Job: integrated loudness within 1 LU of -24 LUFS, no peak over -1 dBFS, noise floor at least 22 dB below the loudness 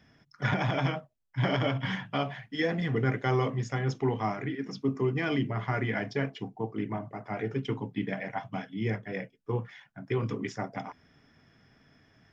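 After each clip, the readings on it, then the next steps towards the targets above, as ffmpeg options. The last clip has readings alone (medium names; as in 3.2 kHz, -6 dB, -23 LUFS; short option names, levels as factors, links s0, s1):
loudness -32.0 LUFS; peak level -15.0 dBFS; loudness target -24.0 LUFS
-> -af "volume=2.51"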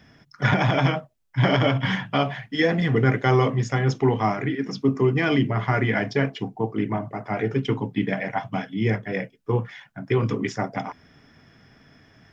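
loudness -24.0 LUFS; peak level -7.0 dBFS; noise floor -57 dBFS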